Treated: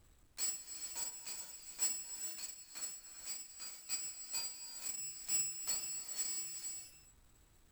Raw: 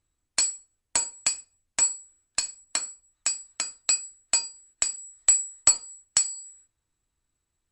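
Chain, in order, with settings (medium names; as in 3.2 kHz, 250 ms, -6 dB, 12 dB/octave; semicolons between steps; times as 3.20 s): square wave that keeps the level; slow attack 786 ms; gated-style reverb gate 490 ms rising, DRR 5 dB; trim +7.5 dB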